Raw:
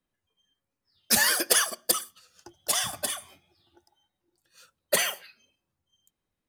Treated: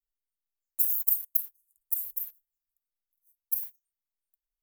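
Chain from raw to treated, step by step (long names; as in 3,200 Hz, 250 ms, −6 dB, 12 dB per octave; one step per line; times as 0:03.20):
inverse Chebyshev band-stop filter 140–1,900 Hz, stop band 80 dB
change of speed 1.4×
in parallel at −9 dB: bit-depth reduction 8 bits, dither none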